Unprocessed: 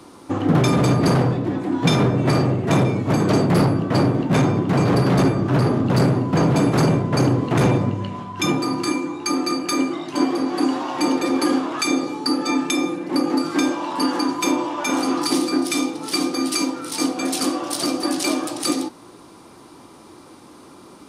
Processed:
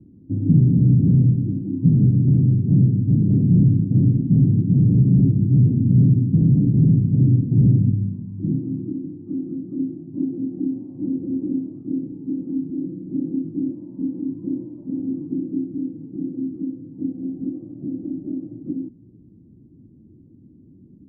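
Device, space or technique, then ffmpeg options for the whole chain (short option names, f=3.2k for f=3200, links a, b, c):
the neighbour's flat through the wall: -af "lowpass=f=230:w=0.5412,lowpass=f=230:w=1.3066,equalizer=f=110:t=o:w=0.4:g=3,volume=4dB"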